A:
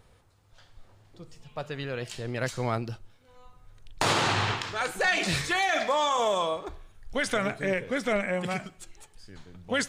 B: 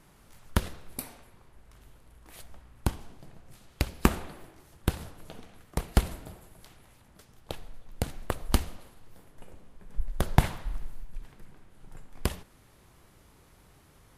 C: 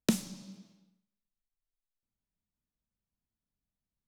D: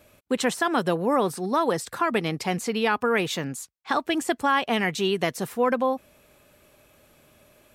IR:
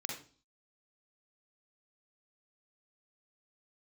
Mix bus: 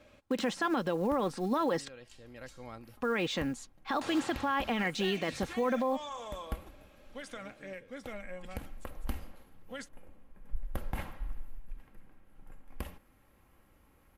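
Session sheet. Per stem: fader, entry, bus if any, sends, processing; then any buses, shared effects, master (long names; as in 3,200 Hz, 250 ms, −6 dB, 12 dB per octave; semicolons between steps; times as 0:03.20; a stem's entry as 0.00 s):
−17.5 dB, 0.00 s, no send, no processing
−6.5 dB, 0.55 s, no send, flat-topped bell 5,700 Hz −8.5 dB; automatic ducking −9 dB, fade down 0.25 s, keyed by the fourth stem
−10.5 dB, 0.30 s, no send, downward compressor, threshold −33 dBFS, peak gain reduction 12 dB
−3.0 dB, 0.00 s, muted 0:01.92–0:02.97, no send, low-pass filter 4,900 Hz 12 dB per octave; de-essing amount 80%; floating-point word with a short mantissa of 4 bits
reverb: not used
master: comb filter 3.7 ms, depth 41%; brickwall limiter −21.5 dBFS, peak gain reduction 12 dB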